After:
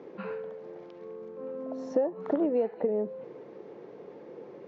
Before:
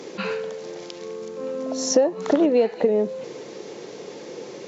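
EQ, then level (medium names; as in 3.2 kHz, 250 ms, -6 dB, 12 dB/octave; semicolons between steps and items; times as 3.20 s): low-pass 1.4 kHz 12 dB/octave; -8.5 dB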